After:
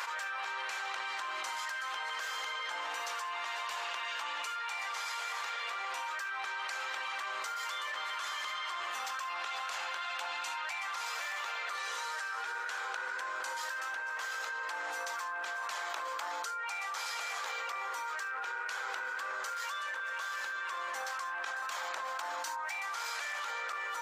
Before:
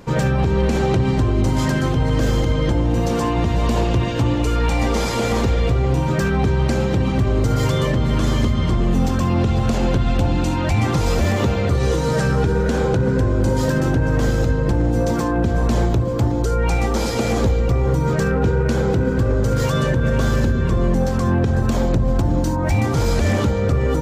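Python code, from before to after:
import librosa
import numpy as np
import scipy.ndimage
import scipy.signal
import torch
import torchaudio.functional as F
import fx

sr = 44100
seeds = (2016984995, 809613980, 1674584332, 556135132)

y = scipy.signal.sosfilt(scipy.signal.butter(4, 1200.0, 'highpass', fs=sr, output='sos'), x)
y = fx.high_shelf(y, sr, hz=2100.0, db=-11.0)
y = fx.env_flatten(y, sr, amount_pct=100)
y = y * librosa.db_to_amplitude(-6.5)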